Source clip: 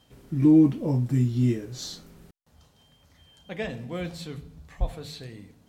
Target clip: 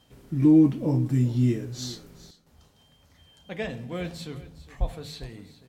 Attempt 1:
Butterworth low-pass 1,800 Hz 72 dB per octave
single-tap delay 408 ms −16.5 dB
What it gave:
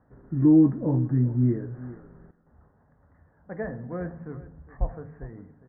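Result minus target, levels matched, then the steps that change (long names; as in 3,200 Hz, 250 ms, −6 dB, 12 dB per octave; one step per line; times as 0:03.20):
2,000 Hz band −4.5 dB
remove: Butterworth low-pass 1,800 Hz 72 dB per octave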